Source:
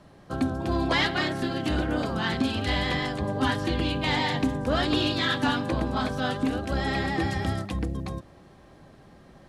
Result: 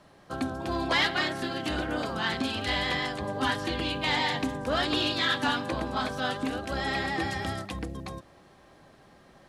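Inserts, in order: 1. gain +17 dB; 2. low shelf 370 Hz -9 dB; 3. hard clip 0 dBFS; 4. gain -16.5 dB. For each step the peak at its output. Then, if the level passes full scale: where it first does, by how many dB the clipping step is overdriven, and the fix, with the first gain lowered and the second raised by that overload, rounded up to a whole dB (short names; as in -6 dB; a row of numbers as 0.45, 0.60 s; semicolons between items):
+5.0, +3.0, 0.0, -16.5 dBFS; step 1, 3.0 dB; step 1 +14 dB, step 4 -13.5 dB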